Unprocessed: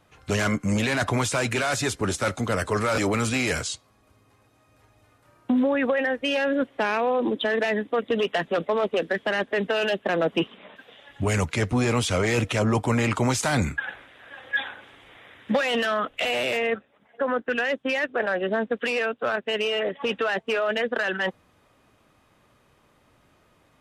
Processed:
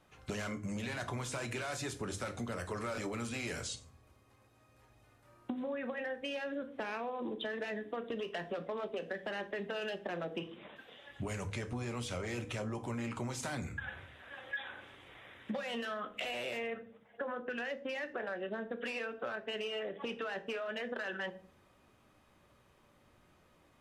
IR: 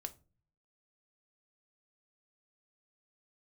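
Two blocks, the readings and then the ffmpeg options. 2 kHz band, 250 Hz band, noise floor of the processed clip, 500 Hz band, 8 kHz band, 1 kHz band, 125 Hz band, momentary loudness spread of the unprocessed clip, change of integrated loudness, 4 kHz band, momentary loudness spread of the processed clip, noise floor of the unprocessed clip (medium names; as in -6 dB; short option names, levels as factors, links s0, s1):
-14.5 dB, -15.0 dB, -67 dBFS, -14.5 dB, -14.0 dB, -14.5 dB, -15.0 dB, 6 LU, -15.0 dB, -14.0 dB, 6 LU, -62 dBFS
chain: -filter_complex "[1:a]atrim=start_sample=2205,asetrate=35280,aresample=44100[s0];[0:a][s0]afir=irnorm=-1:irlink=0,acompressor=threshold=0.0224:ratio=6,volume=0.668"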